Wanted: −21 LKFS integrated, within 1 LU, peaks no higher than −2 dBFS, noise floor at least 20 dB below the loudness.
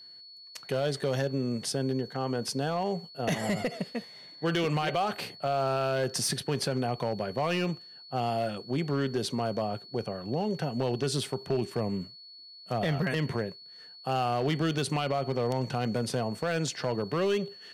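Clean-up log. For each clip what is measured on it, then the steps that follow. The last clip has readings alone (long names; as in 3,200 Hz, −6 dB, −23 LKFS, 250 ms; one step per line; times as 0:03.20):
share of clipped samples 1.4%; peaks flattened at −21.5 dBFS; interfering tone 4,400 Hz; level of the tone −47 dBFS; integrated loudness −30.5 LKFS; sample peak −21.5 dBFS; target loudness −21.0 LKFS
→ clipped peaks rebuilt −21.5 dBFS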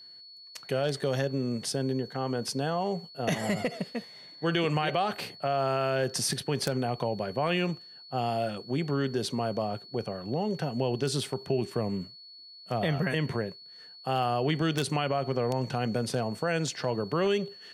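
share of clipped samples 0.0%; interfering tone 4,400 Hz; level of the tone −47 dBFS
→ notch filter 4,400 Hz, Q 30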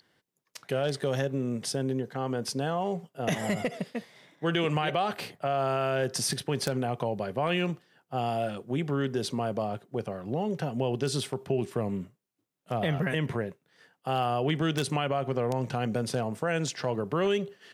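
interfering tone none found; integrated loudness −30.5 LKFS; sample peak −12.5 dBFS; target loudness −21.0 LKFS
→ level +9.5 dB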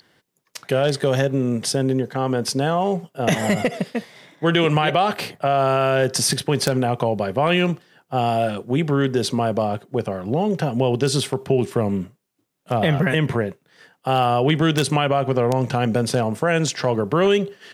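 integrated loudness −21.0 LKFS; sample peak −3.0 dBFS; background noise floor −69 dBFS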